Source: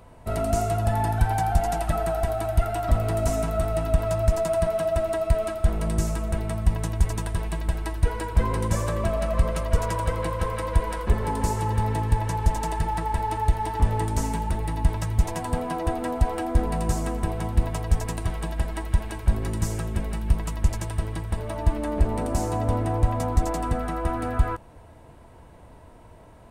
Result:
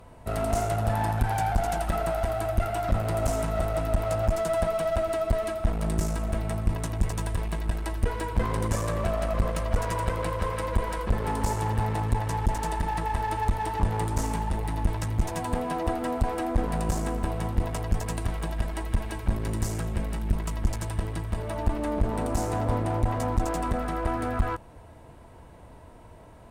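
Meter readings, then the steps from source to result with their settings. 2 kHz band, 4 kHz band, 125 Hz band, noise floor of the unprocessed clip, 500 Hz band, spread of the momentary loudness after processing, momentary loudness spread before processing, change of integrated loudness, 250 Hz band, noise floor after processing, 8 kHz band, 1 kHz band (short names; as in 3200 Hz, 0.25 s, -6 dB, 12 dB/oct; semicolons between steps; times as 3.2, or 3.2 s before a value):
-0.5 dB, -1.0 dB, -3.0 dB, -48 dBFS, -2.0 dB, 4 LU, 5 LU, -2.5 dB, -1.5 dB, -48 dBFS, -2.0 dB, -1.5 dB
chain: one-sided clip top -28 dBFS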